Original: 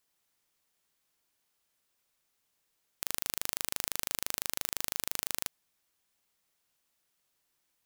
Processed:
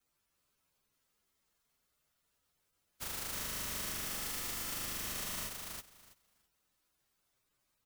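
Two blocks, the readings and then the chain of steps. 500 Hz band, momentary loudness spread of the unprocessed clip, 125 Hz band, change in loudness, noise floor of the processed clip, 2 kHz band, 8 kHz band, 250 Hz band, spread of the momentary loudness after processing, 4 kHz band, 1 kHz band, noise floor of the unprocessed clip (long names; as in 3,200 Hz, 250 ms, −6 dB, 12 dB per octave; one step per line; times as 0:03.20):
−1.5 dB, 3 LU, +4.0 dB, −4.0 dB, −81 dBFS, −2.0 dB, −3.5 dB, +2.0 dB, 8 LU, −3.0 dB, −1.5 dB, −78 dBFS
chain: partials spread apart or drawn together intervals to 113%
low-shelf EQ 160 Hz +5.5 dB
on a send: repeating echo 327 ms, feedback 16%, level −4 dB
on the sum: gate on every frequency bin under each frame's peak −15 dB strong
parametric band 1,300 Hz +4 dB 0.23 octaves
level +4 dB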